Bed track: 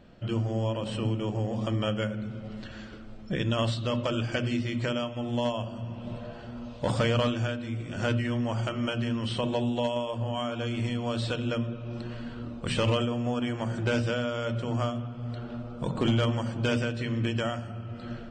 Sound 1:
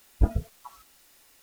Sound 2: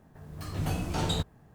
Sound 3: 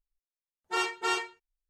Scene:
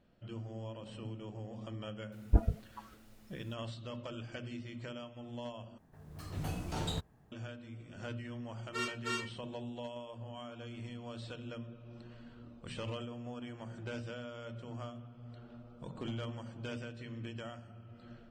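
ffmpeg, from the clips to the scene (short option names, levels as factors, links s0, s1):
-filter_complex "[0:a]volume=0.178[s0];[1:a]highshelf=f=3300:g=-8.5[s1];[3:a]asuperstop=centerf=800:order=4:qfactor=2[s2];[s0]asplit=2[s3][s4];[s3]atrim=end=5.784[s5];[2:a]atrim=end=1.54,asetpts=PTS-STARTPTS,volume=0.422[s6];[s4]atrim=start=7.316[s7];[s1]atrim=end=1.42,asetpts=PTS-STARTPTS,volume=0.631,afade=t=in:d=0.004:c=hsin,afade=t=out:st=1.416:d=0.004:c=hsin,adelay=2120[s8];[s2]atrim=end=1.69,asetpts=PTS-STARTPTS,volume=0.422,afade=t=in:d=0.004:c=hsin,afade=t=out:st=1.686:d=0.004:c=hsin,adelay=353682S[s9];[s5][s6]acrossfade=d=0.004:c1=hsin:c2=hsin[s10];[s10][s7]acrossfade=d=0.004:c1=hsin:c2=hsin[s11];[s11][s8][s9]amix=inputs=3:normalize=0"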